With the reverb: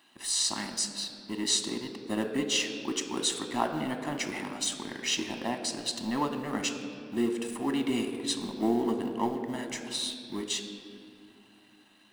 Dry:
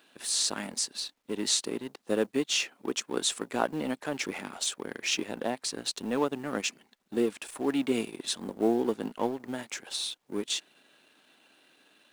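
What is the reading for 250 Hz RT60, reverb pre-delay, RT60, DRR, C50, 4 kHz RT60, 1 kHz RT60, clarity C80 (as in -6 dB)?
3.7 s, 3 ms, 2.4 s, 5.5 dB, 8.0 dB, 1.5 s, 2.2 s, 9.0 dB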